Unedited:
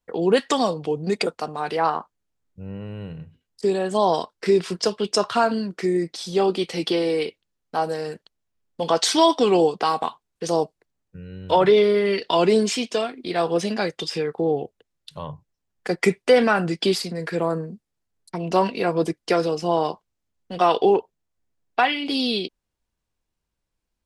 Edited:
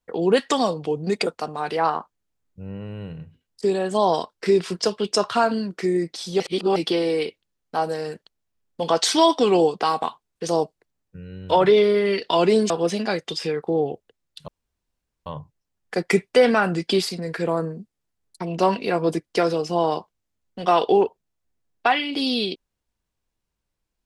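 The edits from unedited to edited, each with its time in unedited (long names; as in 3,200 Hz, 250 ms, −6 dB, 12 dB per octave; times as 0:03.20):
0:06.40–0:06.76: reverse
0:12.70–0:13.41: remove
0:15.19: splice in room tone 0.78 s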